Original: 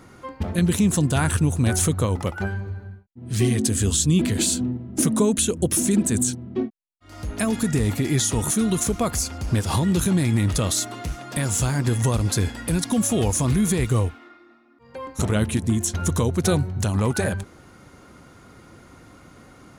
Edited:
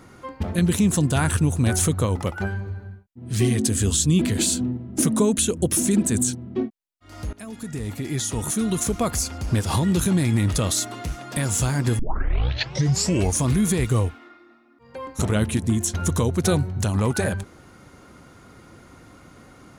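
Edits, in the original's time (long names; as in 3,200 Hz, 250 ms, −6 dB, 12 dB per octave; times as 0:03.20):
0:07.33–0:09.05: fade in, from −18 dB
0:11.99: tape start 1.41 s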